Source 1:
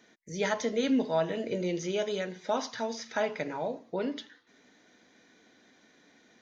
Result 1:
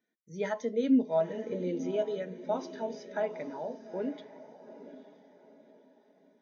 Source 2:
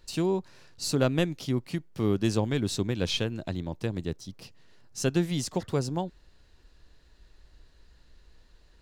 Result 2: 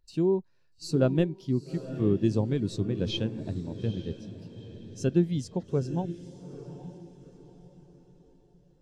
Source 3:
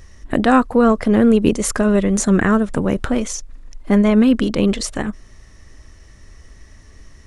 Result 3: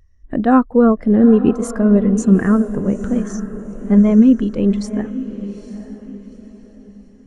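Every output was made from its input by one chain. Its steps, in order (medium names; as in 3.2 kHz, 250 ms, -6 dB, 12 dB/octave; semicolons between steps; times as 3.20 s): echo that smears into a reverb 867 ms, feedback 52%, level -8 dB; spectral contrast expander 1.5:1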